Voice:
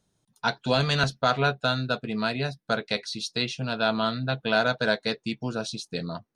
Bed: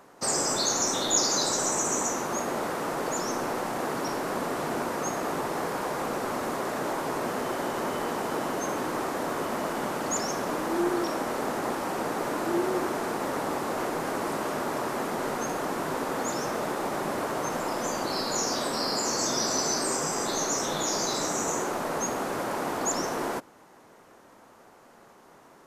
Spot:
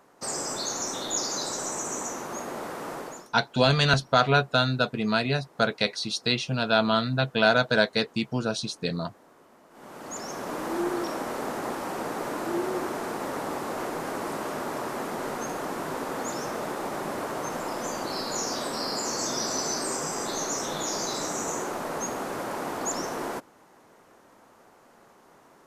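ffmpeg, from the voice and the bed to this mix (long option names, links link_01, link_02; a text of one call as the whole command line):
ffmpeg -i stem1.wav -i stem2.wav -filter_complex "[0:a]adelay=2900,volume=2.5dB[link_01];[1:a]volume=19dB,afade=type=out:start_time=2.95:duration=0.34:silence=0.0891251,afade=type=in:start_time=9.7:duration=0.97:silence=0.0630957[link_02];[link_01][link_02]amix=inputs=2:normalize=0" out.wav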